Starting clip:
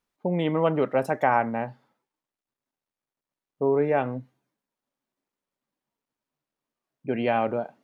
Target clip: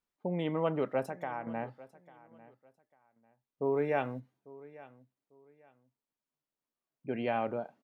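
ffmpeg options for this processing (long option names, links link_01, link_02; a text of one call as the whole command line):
ffmpeg -i in.wav -filter_complex "[0:a]asettb=1/sr,asplit=3[link_01][link_02][link_03];[link_01]atrim=end=1.034[link_04];[link_02]atrim=start=1.03:end=1.47,asetpts=PTS-STARTPTS,afade=type=in:duration=0.004:curve=qsin,afade=type=out:start_time=0.436:duration=0.004:curve=qsin,acompressor=threshold=-33dB:ratio=2[link_05];[link_03]atrim=start=1.466[link_06];[link_04][link_05]acrossfade=duration=0.004:curve1=hsin:curve2=qsin[link_07];[link_07][link_06]acrossfade=duration=0.004:curve1=qsin:curve2=hsin,asplit=3[link_08][link_09][link_10];[link_08]afade=type=out:start_time=3.64:duration=0.02[link_11];[link_09]highshelf=frequency=2400:gain=10.5,afade=type=in:start_time=3.64:duration=0.02,afade=type=out:start_time=4.19:duration=0.02[link_12];[link_10]afade=type=in:start_time=4.19:duration=0.02[link_13];[link_11][link_12][link_13]amix=inputs=3:normalize=0,aecho=1:1:847|1694:0.1|0.026,volume=-8dB" out.wav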